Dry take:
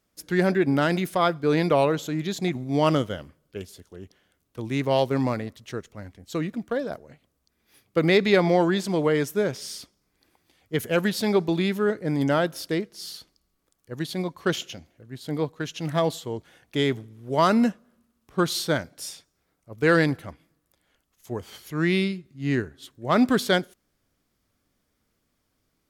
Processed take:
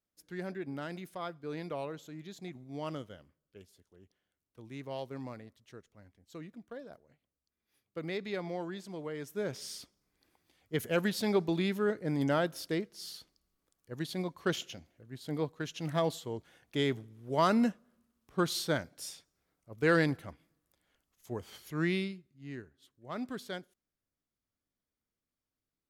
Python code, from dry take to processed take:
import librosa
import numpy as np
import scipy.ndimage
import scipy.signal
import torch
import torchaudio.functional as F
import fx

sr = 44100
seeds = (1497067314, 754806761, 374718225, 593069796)

y = fx.gain(x, sr, db=fx.line((9.16, -18.0), (9.58, -7.0), (21.82, -7.0), (22.47, -19.0)))